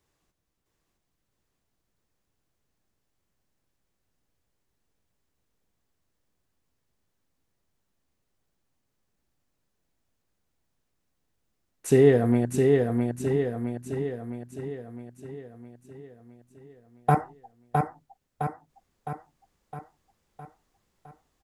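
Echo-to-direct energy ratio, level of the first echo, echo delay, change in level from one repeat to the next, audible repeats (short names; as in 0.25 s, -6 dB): -2.0 dB, -3.5 dB, 0.661 s, -5.0 dB, 7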